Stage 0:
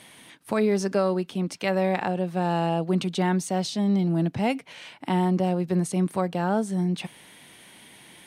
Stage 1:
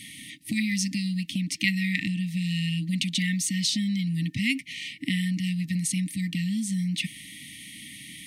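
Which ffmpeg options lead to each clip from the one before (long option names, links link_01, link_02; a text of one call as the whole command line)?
ffmpeg -i in.wav -filter_complex "[0:a]afftfilt=real='re*(1-between(b*sr/4096,320,1800))':imag='im*(1-between(b*sr/4096,320,1800))':win_size=4096:overlap=0.75,acrossover=split=750[link_01][link_02];[link_01]acompressor=threshold=-34dB:ratio=6[link_03];[link_03][link_02]amix=inputs=2:normalize=0,volume=7.5dB" out.wav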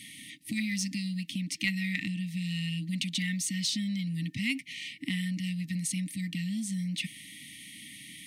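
ffmpeg -i in.wav -filter_complex "[0:a]lowshelf=frequency=79:gain=-8.5,asplit=2[link_01][link_02];[link_02]asoftclip=type=tanh:threshold=-22dB,volume=-7dB[link_03];[link_01][link_03]amix=inputs=2:normalize=0,volume=-7dB" out.wav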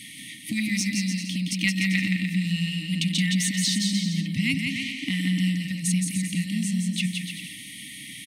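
ffmpeg -i in.wav -af "aecho=1:1:170|297.5|393.1|464.8|518.6:0.631|0.398|0.251|0.158|0.1,volume=5dB" out.wav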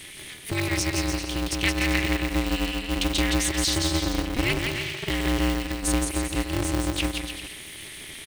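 ffmpeg -i in.wav -af "aeval=exprs='val(0)*sgn(sin(2*PI*120*n/s))':channel_layout=same" out.wav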